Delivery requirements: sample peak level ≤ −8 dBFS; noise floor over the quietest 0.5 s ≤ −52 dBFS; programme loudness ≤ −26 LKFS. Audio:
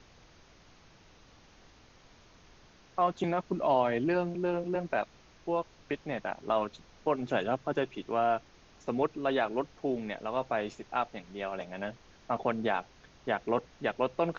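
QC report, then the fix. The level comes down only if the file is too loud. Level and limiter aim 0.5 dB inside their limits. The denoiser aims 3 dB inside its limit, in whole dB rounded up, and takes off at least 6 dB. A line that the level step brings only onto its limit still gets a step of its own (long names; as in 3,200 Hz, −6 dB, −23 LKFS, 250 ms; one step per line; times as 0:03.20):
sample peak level −14.5 dBFS: in spec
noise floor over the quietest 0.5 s −58 dBFS: in spec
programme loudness −32.5 LKFS: in spec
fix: no processing needed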